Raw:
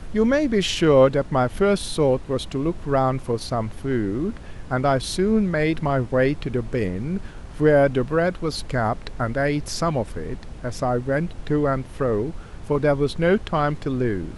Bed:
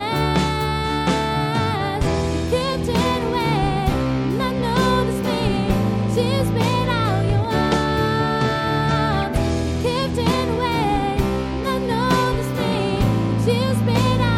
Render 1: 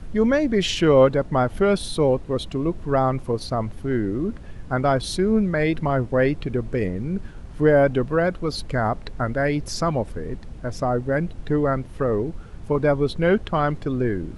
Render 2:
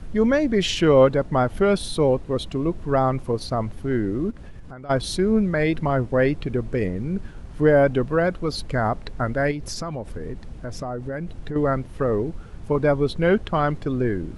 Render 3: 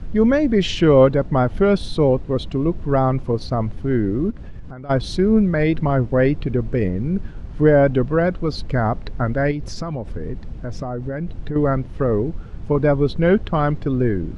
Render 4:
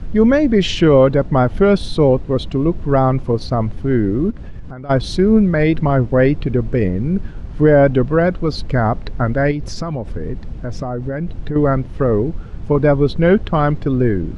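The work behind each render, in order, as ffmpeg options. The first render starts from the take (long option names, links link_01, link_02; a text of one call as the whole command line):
ffmpeg -i in.wav -af "afftdn=noise_reduction=6:noise_floor=-38" out.wav
ffmpeg -i in.wav -filter_complex "[0:a]asplit=3[link_01][link_02][link_03];[link_01]afade=type=out:start_time=4.3:duration=0.02[link_04];[link_02]acompressor=threshold=-34dB:ratio=16:attack=3.2:release=140:knee=1:detection=peak,afade=type=in:start_time=4.3:duration=0.02,afade=type=out:start_time=4.89:duration=0.02[link_05];[link_03]afade=type=in:start_time=4.89:duration=0.02[link_06];[link_04][link_05][link_06]amix=inputs=3:normalize=0,asettb=1/sr,asplit=3[link_07][link_08][link_09];[link_07]atrim=end=9.514[link_10];[link_08]atrim=start=9.51:end=11.56,asetpts=PTS-STARTPTS,afade=type=in:duration=0.004:curve=qsin,afade=type=out:start_time=2.046:duration=0.004:curve=qsin,acompressor=threshold=-26dB:ratio=6:attack=3.2:release=140:knee=1:detection=peak[link_11];[link_09]atrim=start=11.556[link_12];[link_10][link_11]acrossfade=duration=0.004:curve1=hsin:curve2=qsin[link_13];[link_13][link_12]acrossfade=duration=0.004:curve1=qsin:curve2=hsin" out.wav
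ffmpeg -i in.wav -af "lowpass=5700,lowshelf=frequency=380:gain=6" out.wav
ffmpeg -i in.wav -af "volume=3.5dB,alimiter=limit=-2dB:level=0:latency=1" out.wav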